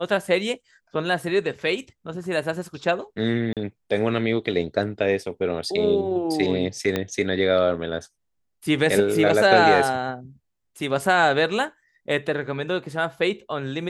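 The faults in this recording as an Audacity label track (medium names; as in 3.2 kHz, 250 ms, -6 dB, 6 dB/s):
3.530000	3.570000	dropout 37 ms
6.960000	6.960000	pop -10 dBFS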